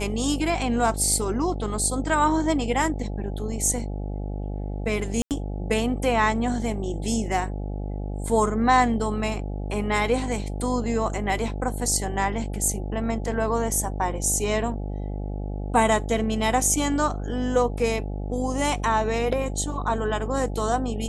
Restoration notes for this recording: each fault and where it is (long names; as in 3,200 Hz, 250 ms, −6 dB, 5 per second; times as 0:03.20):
mains buzz 50 Hz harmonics 17 −30 dBFS
0:05.22–0:05.31: drop-out 88 ms